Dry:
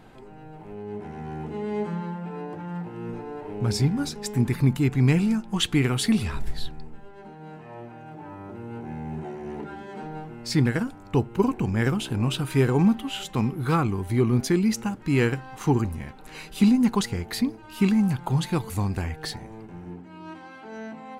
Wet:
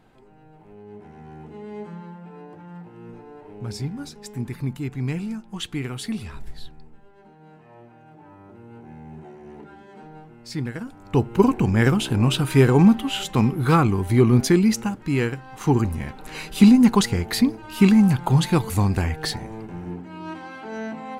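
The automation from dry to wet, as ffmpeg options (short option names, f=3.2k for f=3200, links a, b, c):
-af "volume=14.5dB,afade=t=in:st=10.8:d=0.58:silence=0.237137,afade=t=out:st=14.47:d=0.88:silence=0.375837,afade=t=in:st=15.35:d=0.73:silence=0.354813"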